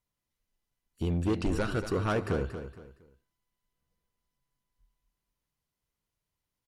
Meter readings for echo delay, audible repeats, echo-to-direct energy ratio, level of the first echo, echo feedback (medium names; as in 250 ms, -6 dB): 232 ms, 3, -9.5 dB, -10.0 dB, 31%